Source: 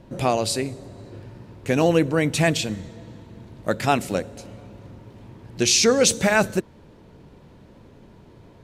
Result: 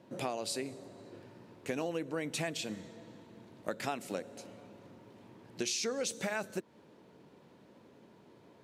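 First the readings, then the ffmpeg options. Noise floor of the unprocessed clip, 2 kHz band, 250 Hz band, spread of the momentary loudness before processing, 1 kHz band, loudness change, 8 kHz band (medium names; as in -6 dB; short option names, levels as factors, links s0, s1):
-49 dBFS, -15.5 dB, -16.5 dB, 19 LU, -16.0 dB, -16.5 dB, -16.0 dB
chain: -af "highpass=210,acompressor=threshold=0.0562:ratio=6,volume=0.422"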